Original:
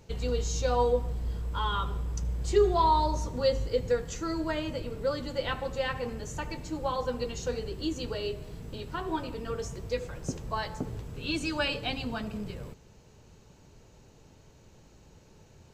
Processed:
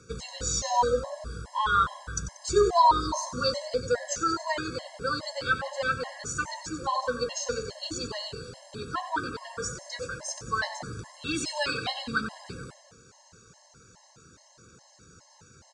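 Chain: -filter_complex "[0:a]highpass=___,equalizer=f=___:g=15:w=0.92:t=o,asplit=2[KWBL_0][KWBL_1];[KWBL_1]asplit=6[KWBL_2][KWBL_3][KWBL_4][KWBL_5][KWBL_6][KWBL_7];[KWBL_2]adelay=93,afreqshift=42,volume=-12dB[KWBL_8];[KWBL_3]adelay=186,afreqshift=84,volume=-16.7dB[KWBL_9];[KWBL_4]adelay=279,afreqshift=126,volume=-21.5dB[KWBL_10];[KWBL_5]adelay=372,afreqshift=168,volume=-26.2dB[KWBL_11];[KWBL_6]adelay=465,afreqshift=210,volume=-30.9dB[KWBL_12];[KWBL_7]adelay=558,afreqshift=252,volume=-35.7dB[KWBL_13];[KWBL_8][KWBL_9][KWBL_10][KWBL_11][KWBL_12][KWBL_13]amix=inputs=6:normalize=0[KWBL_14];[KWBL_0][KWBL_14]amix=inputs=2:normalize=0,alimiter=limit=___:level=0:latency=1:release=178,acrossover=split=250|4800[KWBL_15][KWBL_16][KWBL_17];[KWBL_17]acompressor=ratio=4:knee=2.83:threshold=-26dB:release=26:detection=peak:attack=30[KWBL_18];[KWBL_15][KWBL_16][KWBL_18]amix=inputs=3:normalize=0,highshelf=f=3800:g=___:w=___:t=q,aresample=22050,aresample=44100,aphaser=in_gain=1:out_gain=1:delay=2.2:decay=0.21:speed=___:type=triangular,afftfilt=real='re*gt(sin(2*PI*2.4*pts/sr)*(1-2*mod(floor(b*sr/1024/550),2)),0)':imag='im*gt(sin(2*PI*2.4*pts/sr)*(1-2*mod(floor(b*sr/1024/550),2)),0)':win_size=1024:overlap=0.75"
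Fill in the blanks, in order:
87, 1400, -10dB, 10, 1.5, 0.34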